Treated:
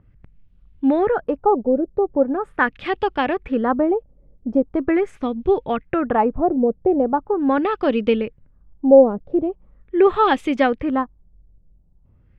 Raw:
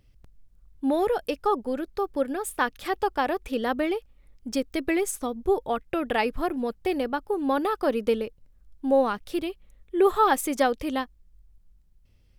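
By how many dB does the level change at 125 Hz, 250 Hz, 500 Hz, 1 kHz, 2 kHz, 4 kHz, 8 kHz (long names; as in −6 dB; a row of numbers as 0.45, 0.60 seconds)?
can't be measured, +8.5 dB, +7.5 dB, +5.0 dB, +5.0 dB, +1.0 dB, below −20 dB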